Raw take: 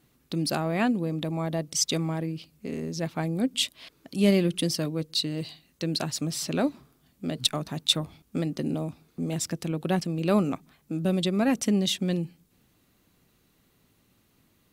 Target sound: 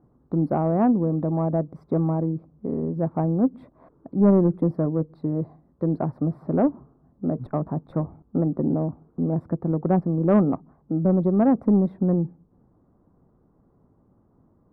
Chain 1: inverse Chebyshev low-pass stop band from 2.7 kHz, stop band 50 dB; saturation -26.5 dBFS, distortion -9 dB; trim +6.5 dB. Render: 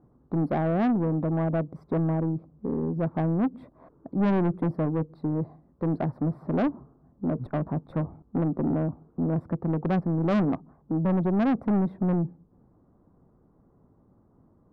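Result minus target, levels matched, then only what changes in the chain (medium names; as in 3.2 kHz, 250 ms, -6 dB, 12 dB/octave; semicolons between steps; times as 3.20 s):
saturation: distortion +11 dB
change: saturation -15.5 dBFS, distortion -20 dB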